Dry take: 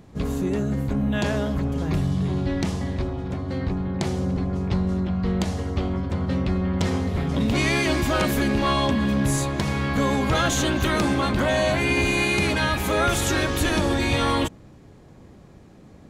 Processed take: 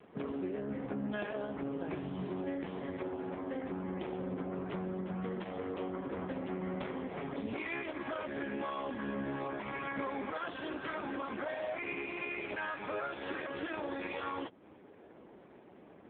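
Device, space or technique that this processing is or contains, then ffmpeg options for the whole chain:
voicemail: -filter_complex "[0:a]asettb=1/sr,asplit=3[link_01][link_02][link_03];[link_01]atrim=end=10.334[link_04];[link_02]atrim=start=10.33:end=11.07,asetpts=PTS-STARTPTS,afade=type=in:duration=0.004:curve=qsin,afade=type=out:start_time=0.736:duration=0.004:curve=qsin,highpass=140[link_05];[link_03]atrim=start=11.066[link_06];[link_04][link_05]acrossfade=duration=0.004:curve1=hsin:curve2=qsin[link_07];[link_07][link_06]acrossfade=duration=0.004:curve1=qsin:curve2=hsin,highpass=330,lowpass=2900,acompressor=threshold=-34dB:ratio=8,volume=1dB" -ar 8000 -c:a libopencore_amrnb -b:a 4750

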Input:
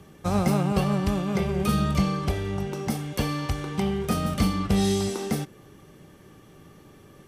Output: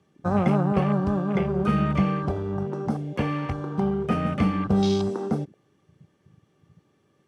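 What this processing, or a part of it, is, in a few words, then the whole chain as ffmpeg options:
over-cleaned archive recording: -af "highpass=100,lowpass=7900,afwtdn=0.0178,volume=2dB"

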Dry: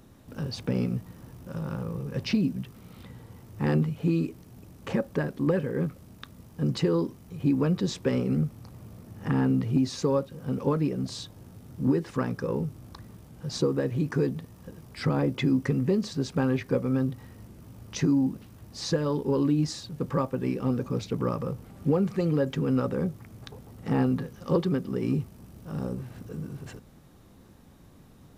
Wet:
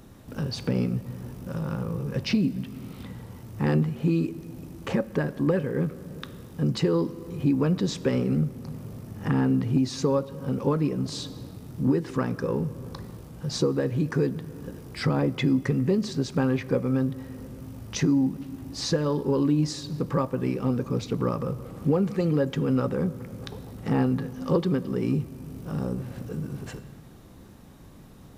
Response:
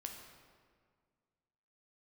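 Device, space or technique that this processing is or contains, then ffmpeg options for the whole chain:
ducked reverb: -filter_complex "[0:a]asplit=3[link_01][link_02][link_03];[1:a]atrim=start_sample=2205[link_04];[link_02][link_04]afir=irnorm=-1:irlink=0[link_05];[link_03]apad=whole_len=1251161[link_06];[link_05][link_06]sidechaincompress=threshold=-32dB:ratio=8:attack=16:release=475,volume=1dB[link_07];[link_01][link_07]amix=inputs=2:normalize=0"

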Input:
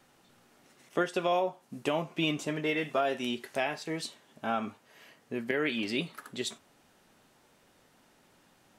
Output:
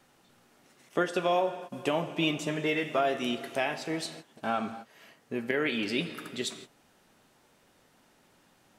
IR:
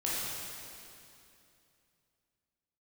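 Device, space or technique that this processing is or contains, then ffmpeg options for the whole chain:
keyed gated reverb: -filter_complex "[0:a]asplit=3[link_01][link_02][link_03];[1:a]atrim=start_sample=2205[link_04];[link_02][link_04]afir=irnorm=-1:irlink=0[link_05];[link_03]apad=whole_len=387623[link_06];[link_05][link_06]sidechaingate=range=-33dB:threshold=-52dB:ratio=16:detection=peak,volume=-15.5dB[link_07];[link_01][link_07]amix=inputs=2:normalize=0"

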